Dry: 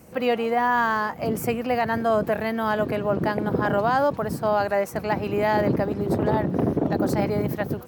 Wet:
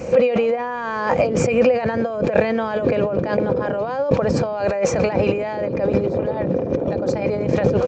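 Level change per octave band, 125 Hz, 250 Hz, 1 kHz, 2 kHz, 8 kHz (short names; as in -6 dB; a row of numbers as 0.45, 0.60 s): +3.5, +2.5, -2.5, -0.5, +7.0 dB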